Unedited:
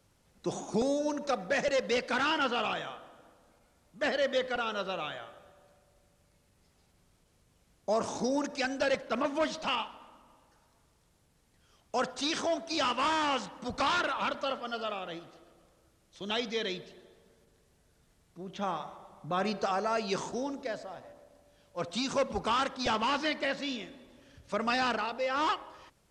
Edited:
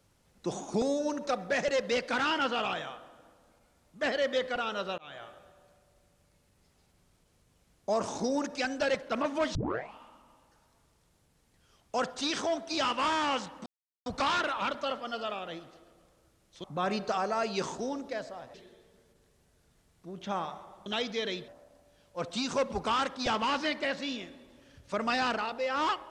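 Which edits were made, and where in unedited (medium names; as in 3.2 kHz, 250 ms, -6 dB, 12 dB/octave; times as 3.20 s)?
4.98–5.25 s: fade in
9.55 s: tape start 0.40 s
13.66 s: insert silence 0.40 s
16.24–16.86 s: swap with 19.18–21.08 s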